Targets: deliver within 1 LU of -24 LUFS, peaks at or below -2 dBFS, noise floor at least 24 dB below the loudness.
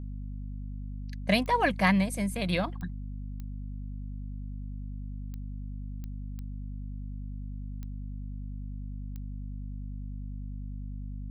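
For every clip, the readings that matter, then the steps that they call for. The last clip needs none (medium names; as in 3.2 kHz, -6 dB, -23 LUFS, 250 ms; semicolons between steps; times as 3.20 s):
clicks found 8; hum 50 Hz; highest harmonic 250 Hz; hum level -35 dBFS; loudness -34.5 LUFS; peak level -12.0 dBFS; loudness target -24.0 LUFS
-> de-click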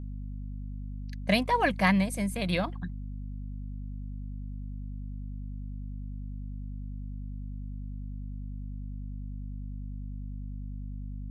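clicks found 0; hum 50 Hz; highest harmonic 250 Hz; hum level -35 dBFS
-> de-hum 50 Hz, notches 5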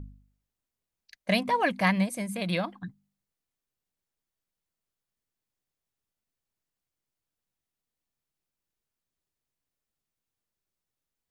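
hum not found; loudness -28.0 LUFS; peak level -12.5 dBFS; loudness target -24.0 LUFS
-> trim +4 dB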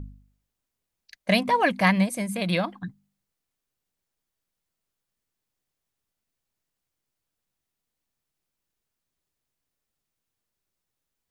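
loudness -24.0 LUFS; peak level -8.5 dBFS; noise floor -84 dBFS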